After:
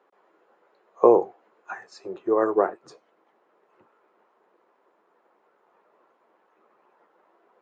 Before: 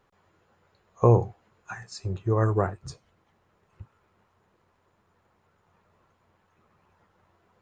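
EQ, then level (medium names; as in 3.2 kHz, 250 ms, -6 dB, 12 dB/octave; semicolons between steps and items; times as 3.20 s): high-pass 320 Hz 24 dB/octave; low-pass 1 kHz 6 dB/octave; +7.0 dB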